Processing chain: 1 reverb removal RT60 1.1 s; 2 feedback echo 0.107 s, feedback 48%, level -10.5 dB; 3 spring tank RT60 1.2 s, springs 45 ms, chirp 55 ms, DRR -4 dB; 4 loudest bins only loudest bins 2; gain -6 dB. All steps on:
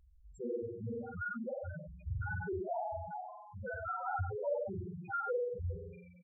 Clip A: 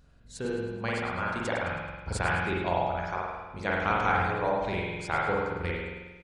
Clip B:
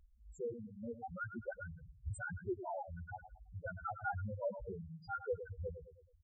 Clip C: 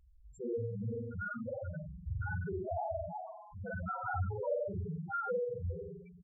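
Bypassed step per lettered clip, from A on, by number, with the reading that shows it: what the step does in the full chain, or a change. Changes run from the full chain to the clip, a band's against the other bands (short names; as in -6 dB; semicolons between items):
4, 2 kHz band +5.5 dB; 3, crest factor change +3.0 dB; 1, 125 Hz band +3.0 dB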